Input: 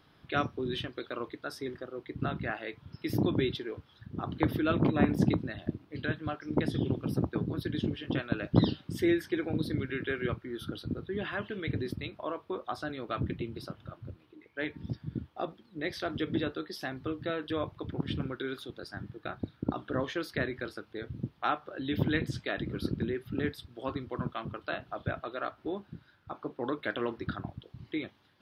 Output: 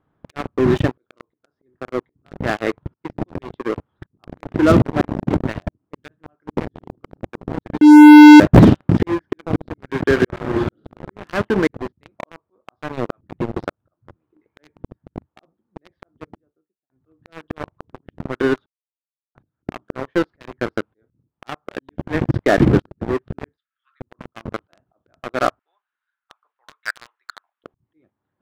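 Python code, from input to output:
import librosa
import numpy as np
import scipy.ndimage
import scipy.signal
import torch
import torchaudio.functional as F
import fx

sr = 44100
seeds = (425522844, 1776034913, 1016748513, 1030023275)

y = fx.reverb_throw(x, sr, start_s=10.13, length_s=0.88, rt60_s=1.0, drr_db=1.0)
y = fx.studio_fade_out(y, sr, start_s=15.32, length_s=1.58)
y = fx.steep_highpass(y, sr, hz=1300.0, slope=72, at=(23.56, 24.0), fade=0.02)
y = fx.bessel_highpass(y, sr, hz=2000.0, order=4, at=(25.59, 27.64))
y = fx.edit(y, sr, fx.bleep(start_s=7.81, length_s=0.59, hz=300.0, db=-6.5),
    fx.silence(start_s=18.66, length_s=0.69), tone=tone)
y = scipy.signal.sosfilt(scipy.signal.butter(2, 1200.0, 'lowpass', fs=sr, output='sos'), y)
y = fx.auto_swell(y, sr, attack_ms=589.0)
y = fx.leveller(y, sr, passes=5)
y = F.gain(torch.from_numpy(y), 5.5).numpy()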